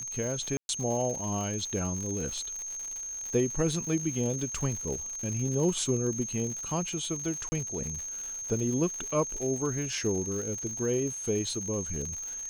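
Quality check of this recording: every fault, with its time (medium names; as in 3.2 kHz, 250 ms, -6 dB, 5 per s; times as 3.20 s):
crackle 130 per s -35 dBFS
whine 6.4 kHz -35 dBFS
0.57–0.69 s: dropout 121 ms
7.49–7.52 s: dropout 30 ms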